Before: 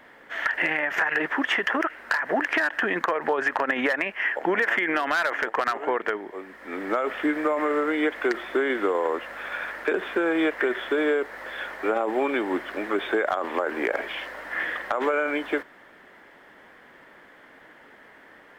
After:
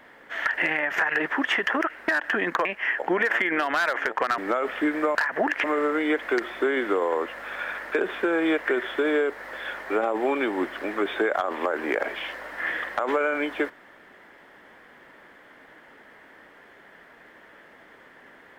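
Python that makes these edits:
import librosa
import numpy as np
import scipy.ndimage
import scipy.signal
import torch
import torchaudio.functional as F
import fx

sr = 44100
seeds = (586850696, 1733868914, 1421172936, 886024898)

y = fx.edit(x, sr, fx.move(start_s=2.08, length_s=0.49, to_s=7.57),
    fx.cut(start_s=3.14, length_s=0.88),
    fx.cut(start_s=5.75, length_s=1.05), tone=tone)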